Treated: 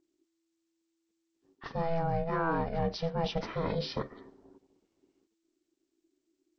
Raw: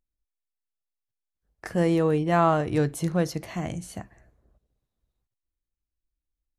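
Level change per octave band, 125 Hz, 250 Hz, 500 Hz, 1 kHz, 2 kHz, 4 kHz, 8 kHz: -7.5 dB, -10.0 dB, -7.0 dB, -5.5 dB, -5.5 dB, +1.0 dB, under -15 dB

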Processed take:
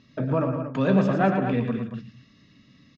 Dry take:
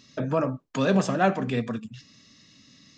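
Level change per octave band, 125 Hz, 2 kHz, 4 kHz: +4.0, -1.0, -6.0 dB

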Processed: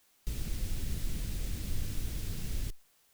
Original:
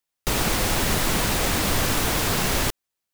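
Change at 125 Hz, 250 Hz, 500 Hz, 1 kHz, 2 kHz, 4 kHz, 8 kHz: -10.5, -17.5, -25.0, -32.0, -26.0, -22.0, -20.5 dB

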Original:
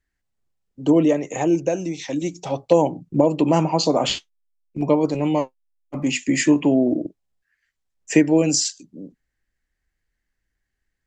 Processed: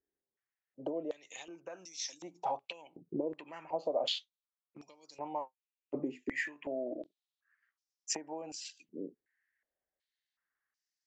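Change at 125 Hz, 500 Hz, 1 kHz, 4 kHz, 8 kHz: -30.5, -18.0, -14.5, -13.0, -16.5 dB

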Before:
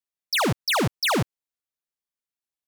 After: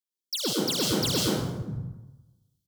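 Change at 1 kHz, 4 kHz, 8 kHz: -10.5, -0.5, +2.5 dB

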